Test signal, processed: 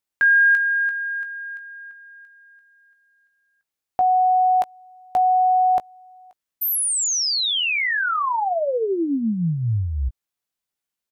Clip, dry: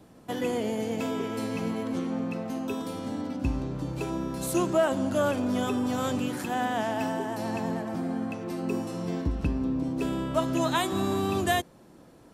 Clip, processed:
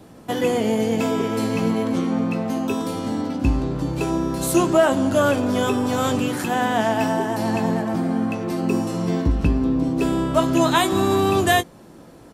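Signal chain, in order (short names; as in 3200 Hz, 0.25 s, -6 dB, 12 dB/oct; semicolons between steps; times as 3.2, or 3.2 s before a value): doubler 18 ms -10 dB; gain +8 dB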